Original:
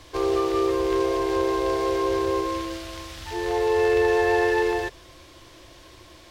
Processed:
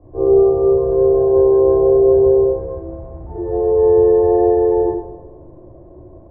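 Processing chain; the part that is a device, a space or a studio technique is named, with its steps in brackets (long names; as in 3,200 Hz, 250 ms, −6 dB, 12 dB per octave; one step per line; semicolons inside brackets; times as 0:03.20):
next room (low-pass filter 660 Hz 24 dB per octave; convolution reverb RT60 1.1 s, pre-delay 17 ms, DRR −10 dB)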